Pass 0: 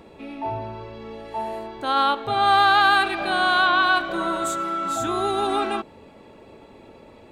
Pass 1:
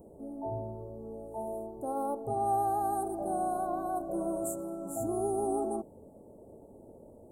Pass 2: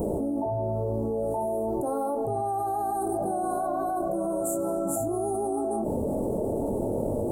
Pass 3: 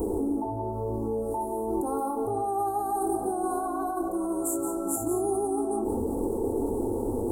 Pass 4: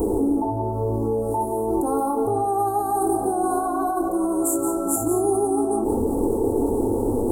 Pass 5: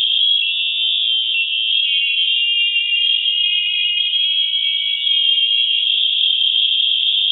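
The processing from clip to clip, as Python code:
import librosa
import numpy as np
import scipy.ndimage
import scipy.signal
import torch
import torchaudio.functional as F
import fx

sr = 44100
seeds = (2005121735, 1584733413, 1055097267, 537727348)

y1 = scipy.signal.sosfilt(scipy.signal.cheby1(3, 1.0, [680.0, 9400.0], 'bandstop', fs=sr, output='sos'), x)
y1 = fx.high_shelf(y1, sr, hz=4600.0, db=7.5)
y1 = y1 * librosa.db_to_amplitude(-4.5)
y2 = fx.chorus_voices(y1, sr, voices=4, hz=0.37, base_ms=24, depth_ms=4.6, mix_pct=35)
y2 = fx.env_flatten(y2, sr, amount_pct=100)
y3 = fx.fixed_phaser(y2, sr, hz=610.0, stages=6)
y3 = y3 + 10.0 ** (-9.0 / 20.0) * np.pad(y3, (int(176 * sr / 1000.0), 0))[:len(y3)]
y3 = y3 * librosa.db_to_amplitude(2.5)
y4 = fx.room_shoebox(y3, sr, seeds[0], volume_m3=1500.0, walls='mixed', distance_m=0.32)
y4 = y4 * librosa.db_to_amplitude(6.5)
y5 = fx.freq_invert(y4, sr, carrier_hz=3600)
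y5 = y5 * librosa.db_to_amplitude(5.5)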